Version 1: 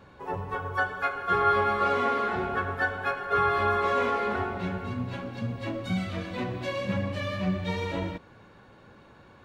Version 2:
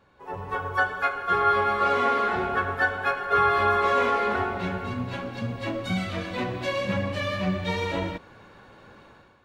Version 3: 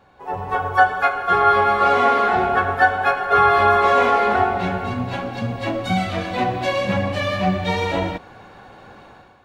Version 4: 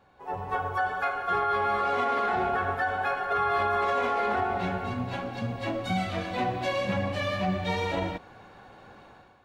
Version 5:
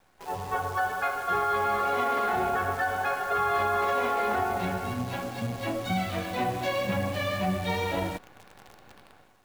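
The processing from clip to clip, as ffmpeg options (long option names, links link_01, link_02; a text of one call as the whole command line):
ffmpeg -i in.wav -af "equalizer=frequency=130:width_type=o:width=3:gain=-4.5,dynaudnorm=framelen=150:gausssize=5:maxgain=12dB,volume=-7dB" out.wav
ffmpeg -i in.wav -af "equalizer=frequency=750:width_type=o:width=0.23:gain=11,volume=5.5dB" out.wav
ffmpeg -i in.wav -af "alimiter=limit=-11.5dB:level=0:latency=1:release=24,volume=-7dB" out.wav
ffmpeg -i in.wav -af "acrusher=bits=8:dc=4:mix=0:aa=0.000001" out.wav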